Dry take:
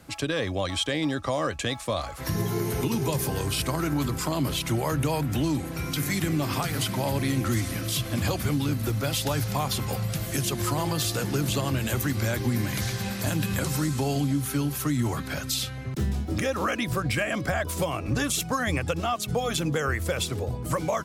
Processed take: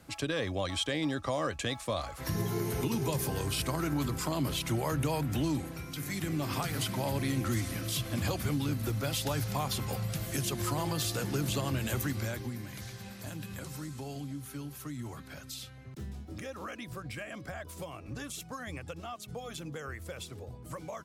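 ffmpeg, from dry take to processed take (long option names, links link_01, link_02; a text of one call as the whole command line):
ffmpeg -i in.wav -af "volume=1.5dB,afade=type=out:start_time=5.59:duration=0.27:silence=0.446684,afade=type=in:start_time=5.86:duration=0.71:silence=0.473151,afade=type=out:start_time=12.01:duration=0.57:silence=0.354813" out.wav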